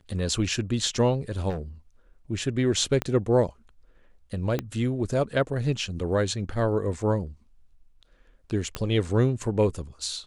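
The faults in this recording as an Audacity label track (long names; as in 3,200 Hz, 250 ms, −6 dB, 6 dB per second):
1.490000	1.610000	clipping −27.5 dBFS
3.020000	3.020000	click −13 dBFS
4.590000	4.590000	click −14 dBFS
8.750000	8.750000	click −14 dBFS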